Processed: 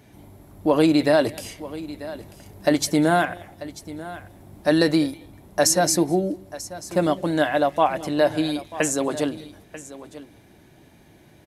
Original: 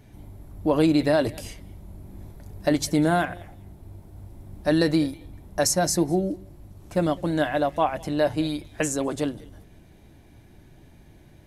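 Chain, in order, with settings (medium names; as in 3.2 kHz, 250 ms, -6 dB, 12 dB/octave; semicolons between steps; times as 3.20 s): high-pass 230 Hz 6 dB/octave; on a send: delay 940 ms -16 dB; on the sum: trim +4 dB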